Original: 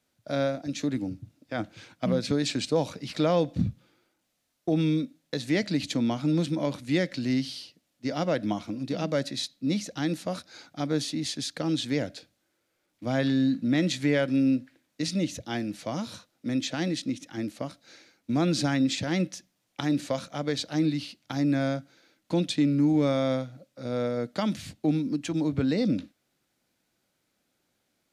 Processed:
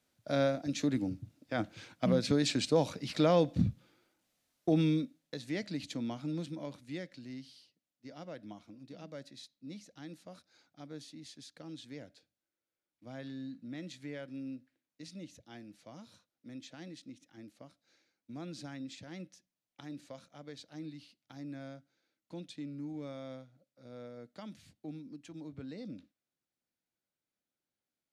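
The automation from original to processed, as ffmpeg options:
-af "volume=-2.5dB,afade=t=out:st=4.72:d=0.65:silence=0.375837,afade=t=out:st=6.11:d=1.19:silence=0.398107"

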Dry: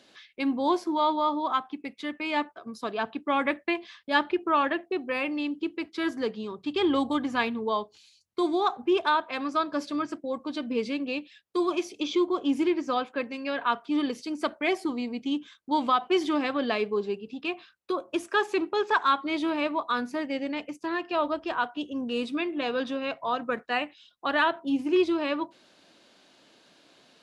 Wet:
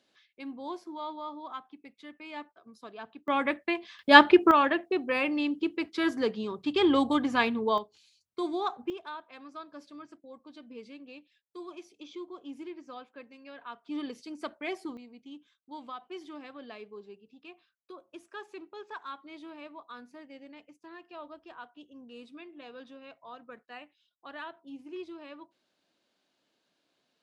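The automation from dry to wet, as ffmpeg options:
-af "asetnsamples=n=441:p=0,asendcmd='3.28 volume volume -2dB;3.99 volume volume 9dB;4.51 volume volume 1dB;7.78 volume volume -6dB;8.9 volume volume -17dB;13.86 volume volume -9dB;14.97 volume volume -18dB',volume=-13.5dB"

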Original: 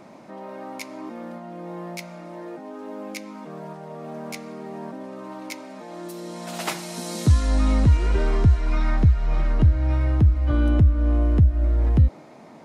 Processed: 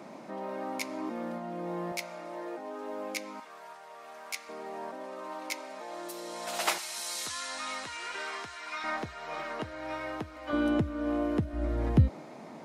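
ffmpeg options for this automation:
-af "asetnsamples=n=441:p=0,asendcmd='1.92 highpass f 390;3.4 highpass f 1200;4.49 highpass f 510;6.78 highpass f 1200;8.84 highpass f 570;10.53 highpass f 270;11.53 highpass f 120',highpass=170"

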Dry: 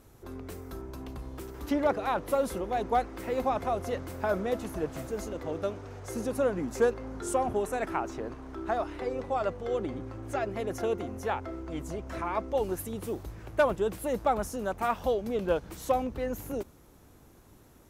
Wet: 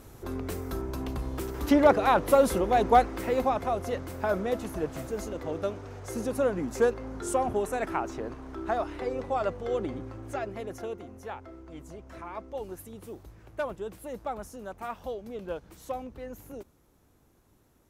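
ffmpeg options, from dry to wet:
-af "volume=7dB,afade=t=out:st=2.97:d=0.6:silence=0.501187,afade=t=out:st=9.84:d=1.15:silence=0.354813"

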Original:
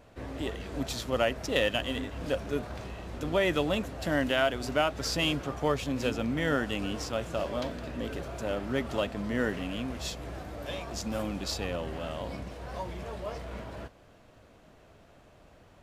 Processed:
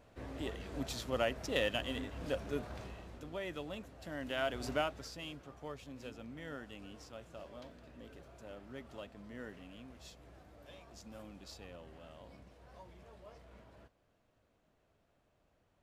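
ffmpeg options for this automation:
-af "volume=3.5dB,afade=t=out:st=2.82:d=0.46:silence=0.354813,afade=t=in:st=4.18:d=0.51:silence=0.316228,afade=t=out:st=4.69:d=0.41:silence=0.237137"

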